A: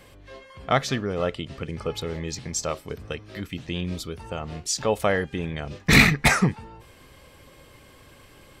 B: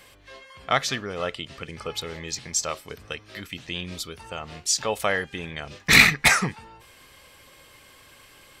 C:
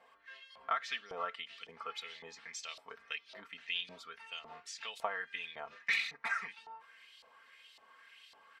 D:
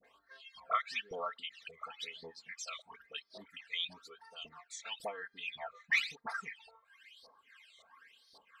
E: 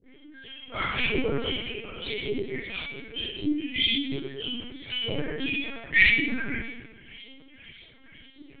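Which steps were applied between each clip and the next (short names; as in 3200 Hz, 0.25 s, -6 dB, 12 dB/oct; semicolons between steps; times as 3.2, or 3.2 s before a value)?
tilt shelf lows -6 dB, about 740 Hz; gain -2 dB
compressor 16:1, threshold -24 dBFS, peak gain reduction 16.5 dB; comb 4.4 ms, depth 71%; LFO band-pass saw up 1.8 Hz 730–4300 Hz; gain -3 dB
phaser stages 12, 1 Hz, lowest notch 270–2700 Hz; reverb removal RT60 1.3 s; dispersion highs, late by 45 ms, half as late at 1100 Hz; gain +3.5 dB
vowel filter i; reverb RT60 1.3 s, pre-delay 3 ms, DRR -23 dB; LPC vocoder at 8 kHz pitch kept; gain +5.5 dB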